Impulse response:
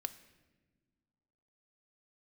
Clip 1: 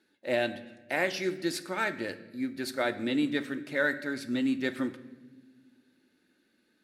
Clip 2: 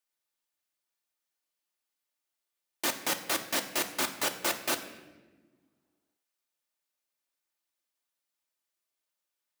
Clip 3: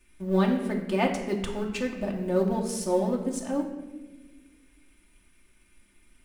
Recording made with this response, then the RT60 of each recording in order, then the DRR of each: 1; no single decay rate, no single decay rate, no single decay rate; 9.5 dB, 5.0 dB, -0.5 dB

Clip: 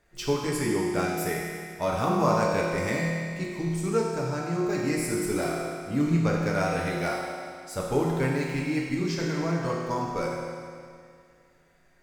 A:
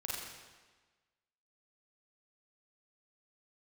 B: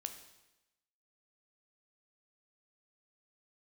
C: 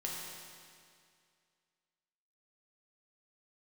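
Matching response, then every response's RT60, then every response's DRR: C; 1.3 s, 1.0 s, 2.2 s; -6.0 dB, 7.0 dB, -4.0 dB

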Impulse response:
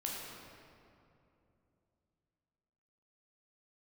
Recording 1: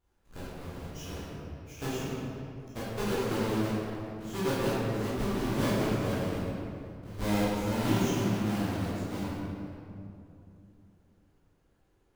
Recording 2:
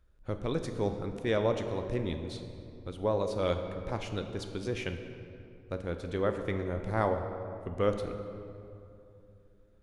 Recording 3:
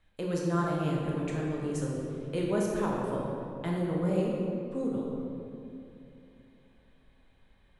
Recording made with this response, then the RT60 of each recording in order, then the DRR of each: 3; 2.8 s, 2.8 s, 2.8 s; -11.0 dB, 6.0 dB, -3.5 dB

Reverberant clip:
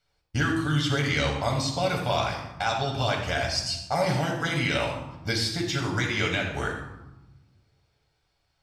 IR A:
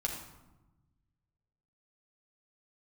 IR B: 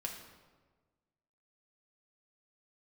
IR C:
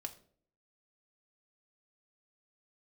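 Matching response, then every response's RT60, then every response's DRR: A; 1.1 s, 1.4 s, 0.55 s; -1.0 dB, 0.0 dB, 4.0 dB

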